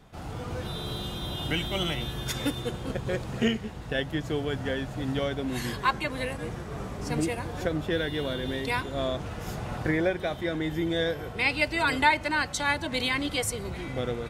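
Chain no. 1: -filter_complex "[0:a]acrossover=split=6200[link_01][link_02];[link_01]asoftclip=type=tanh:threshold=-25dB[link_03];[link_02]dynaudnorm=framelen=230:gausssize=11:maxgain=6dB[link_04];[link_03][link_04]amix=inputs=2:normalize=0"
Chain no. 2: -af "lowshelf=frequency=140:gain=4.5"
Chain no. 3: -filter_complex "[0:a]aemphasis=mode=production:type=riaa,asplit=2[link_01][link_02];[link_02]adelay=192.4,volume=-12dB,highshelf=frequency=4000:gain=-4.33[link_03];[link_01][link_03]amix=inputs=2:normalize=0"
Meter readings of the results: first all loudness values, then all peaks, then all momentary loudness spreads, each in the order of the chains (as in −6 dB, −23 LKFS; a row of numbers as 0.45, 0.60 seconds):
−32.0, −29.0, −26.5 LKFS; −15.0, −8.5, −3.0 dBFS; 7, 8, 12 LU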